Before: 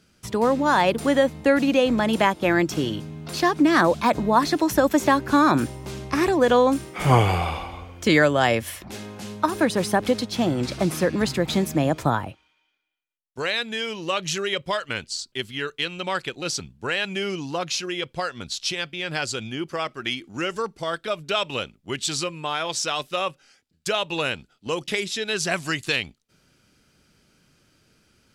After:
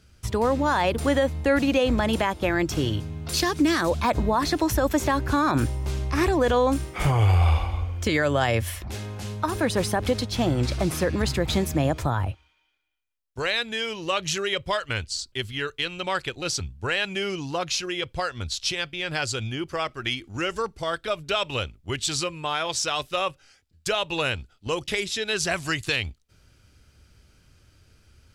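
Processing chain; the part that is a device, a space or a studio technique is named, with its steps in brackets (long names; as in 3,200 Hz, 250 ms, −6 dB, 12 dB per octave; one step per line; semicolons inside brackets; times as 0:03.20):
car stereo with a boomy subwoofer (low shelf with overshoot 120 Hz +12 dB, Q 1.5; brickwall limiter −12.5 dBFS, peak gain reduction 11 dB)
0:03.29–0:03.90: drawn EQ curve 460 Hz 0 dB, 730 Hz −5 dB, 6,200 Hz +7 dB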